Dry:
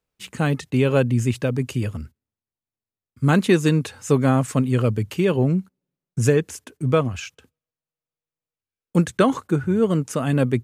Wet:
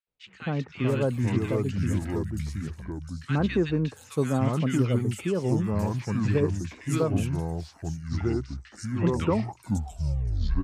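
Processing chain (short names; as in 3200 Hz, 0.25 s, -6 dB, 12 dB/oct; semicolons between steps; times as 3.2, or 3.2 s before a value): tape stop at the end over 1.61 s; echoes that change speed 0.267 s, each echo -4 st, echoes 2; three bands offset in time mids, lows, highs 70/680 ms, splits 1400/5000 Hz; gain -7.5 dB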